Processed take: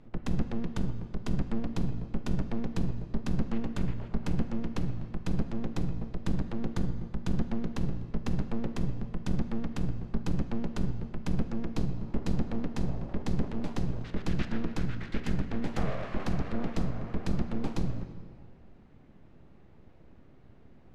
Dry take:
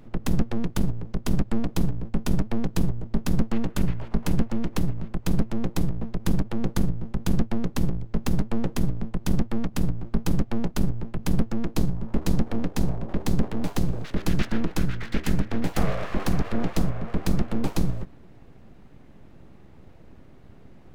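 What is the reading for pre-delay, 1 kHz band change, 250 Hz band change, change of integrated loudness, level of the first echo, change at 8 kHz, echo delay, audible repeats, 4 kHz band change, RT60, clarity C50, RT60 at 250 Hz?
26 ms, -6.5 dB, -6.0 dB, -6.0 dB, no echo, -12.5 dB, no echo, no echo, -8.0 dB, 2.1 s, 10.5 dB, 2.1 s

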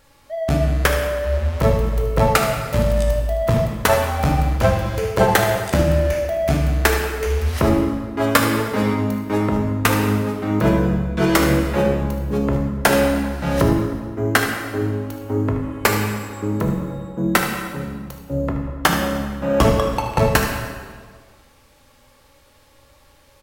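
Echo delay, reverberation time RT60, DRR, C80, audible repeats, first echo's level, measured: 76 ms, 1.6 s, 1.0 dB, 5.0 dB, 1, -10.5 dB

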